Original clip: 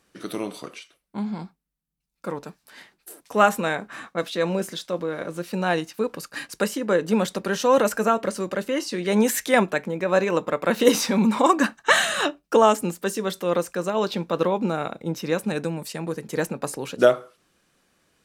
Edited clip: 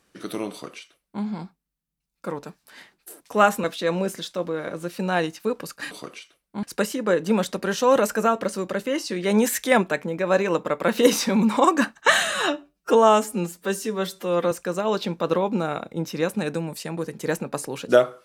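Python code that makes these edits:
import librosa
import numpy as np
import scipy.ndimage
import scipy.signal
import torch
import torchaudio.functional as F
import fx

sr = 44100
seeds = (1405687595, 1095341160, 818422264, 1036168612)

y = fx.edit(x, sr, fx.duplicate(start_s=0.51, length_s=0.72, to_s=6.45),
    fx.cut(start_s=3.64, length_s=0.54),
    fx.stretch_span(start_s=12.16, length_s=1.45, factor=1.5), tone=tone)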